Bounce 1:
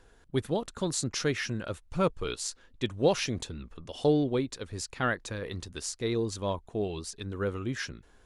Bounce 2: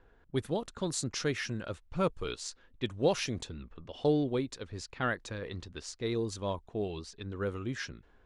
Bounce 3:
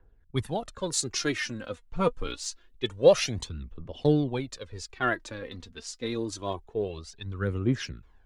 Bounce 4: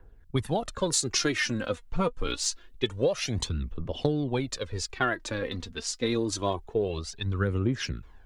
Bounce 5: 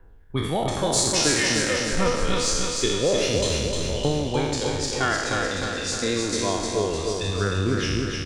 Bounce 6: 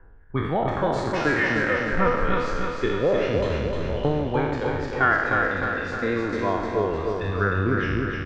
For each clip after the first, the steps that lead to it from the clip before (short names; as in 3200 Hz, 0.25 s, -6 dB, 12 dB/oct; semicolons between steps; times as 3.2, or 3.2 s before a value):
low-pass opened by the level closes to 2200 Hz, open at -26 dBFS; gain -3 dB
phaser 0.26 Hz, delay 4.5 ms, feedback 58%; three-band expander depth 40%; gain +2.5 dB
compressor 16:1, threshold -29 dBFS, peak gain reduction 18 dB; gain +7 dB
spectral trails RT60 1.20 s; feedback echo 0.305 s, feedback 56%, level -4 dB
synth low-pass 1600 Hz, resonance Q 1.9